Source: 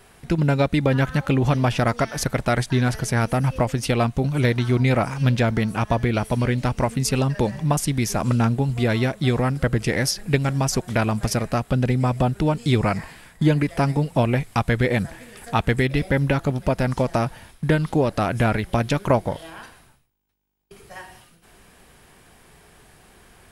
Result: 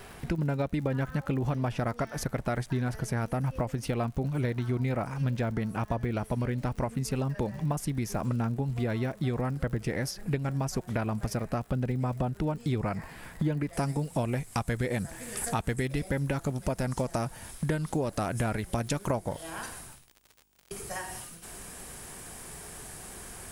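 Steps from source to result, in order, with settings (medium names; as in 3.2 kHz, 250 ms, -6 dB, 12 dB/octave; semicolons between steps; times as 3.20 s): compression 2.5:1, threshold -39 dBFS, peak gain reduction 17 dB; peaking EQ 8.3 kHz -4 dB 1.6 oct, from 13.73 s +11 dB; crackle 86 per s -45 dBFS; dynamic bell 3.4 kHz, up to -6 dB, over -57 dBFS, Q 0.82; trim +5 dB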